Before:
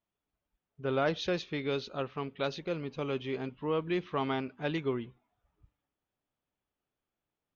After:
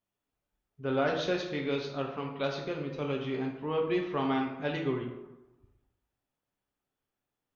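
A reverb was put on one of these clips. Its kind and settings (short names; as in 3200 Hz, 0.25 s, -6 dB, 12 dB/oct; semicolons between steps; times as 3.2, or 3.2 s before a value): plate-style reverb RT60 1 s, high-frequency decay 0.55×, DRR 0.5 dB; gain -1.5 dB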